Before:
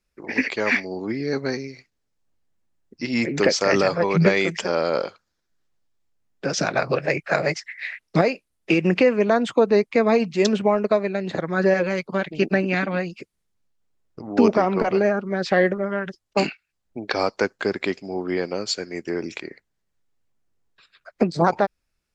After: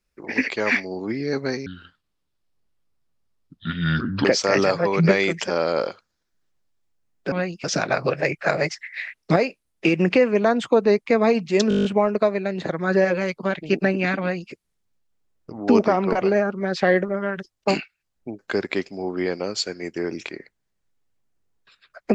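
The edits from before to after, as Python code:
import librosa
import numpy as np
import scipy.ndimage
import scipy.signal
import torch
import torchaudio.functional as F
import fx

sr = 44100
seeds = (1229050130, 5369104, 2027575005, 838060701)

y = fx.edit(x, sr, fx.speed_span(start_s=1.66, length_s=1.76, speed=0.68),
    fx.stutter(start_s=10.54, slice_s=0.02, count=9),
    fx.duplicate(start_s=12.89, length_s=0.32, to_s=6.49),
    fx.cut(start_s=17.08, length_s=0.42), tone=tone)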